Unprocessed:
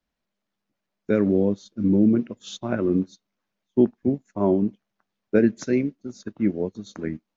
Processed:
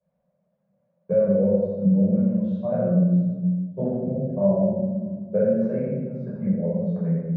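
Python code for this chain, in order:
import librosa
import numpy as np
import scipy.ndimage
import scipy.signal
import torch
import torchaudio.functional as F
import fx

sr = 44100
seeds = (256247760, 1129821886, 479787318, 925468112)

p1 = fx.dereverb_blind(x, sr, rt60_s=0.63)
p2 = fx.vibrato(p1, sr, rate_hz=0.88, depth_cents=38.0)
p3 = fx.double_bandpass(p2, sr, hz=310.0, octaves=1.7)
p4 = fx.air_absorb(p3, sr, metres=140.0)
p5 = p4 + fx.echo_single(p4, sr, ms=84, db=-9.5, dry=0)
p6 = fx.room_shoebox(p5, sr, seeds[0], volume_m3=780.0, walls='mixed', distance_m=5.5)
y = fx.band_squash(p6, sr, depth_pct=40)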